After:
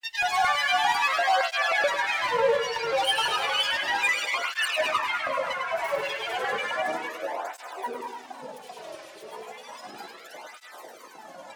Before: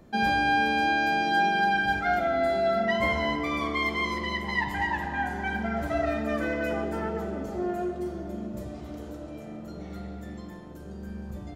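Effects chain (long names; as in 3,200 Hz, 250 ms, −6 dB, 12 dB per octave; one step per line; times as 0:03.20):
high-shelf EQ 2,800 Hz +8.5 dB
in parallel at +0.5 dB: downward compressor, threshold −35 dBFS, peak gain reduction 15.5 dB
on the sum: auto-filter high-pass square 2 Hz 760–2,200 Hz
gain into a clipping stage and back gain 19 dB
granular cloud, pitch spread up and down by 7 semitones
feedback echo with a high-pass in the loop 103 ms, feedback 62%, high-pass 160 Hz, level −6 dB
convolution reverb RT60 2.5 s, pre-delay 4 ms, DRR 11.5 dB
through-zero flanger with one copy inverted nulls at 0.33 Hz, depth 4.5 ms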